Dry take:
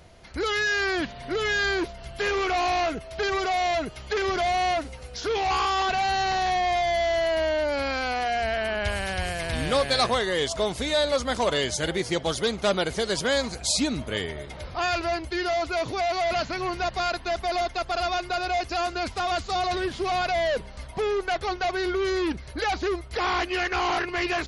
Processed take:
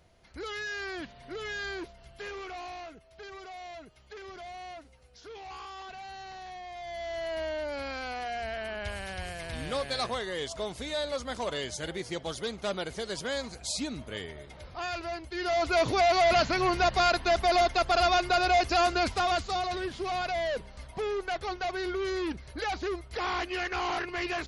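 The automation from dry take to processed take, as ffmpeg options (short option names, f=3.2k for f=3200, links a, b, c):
-af "volume=10dB,afade=t=out:st=1.76:d=1.17:silence=0.421697,afade=t=in:st=6.74:d=0.65:silence=0.316228,afade=t=in:st=15.32:d=0.49:silence=0.266073,afade=t=out:st=18.92:d=0.75:silence=0.375837"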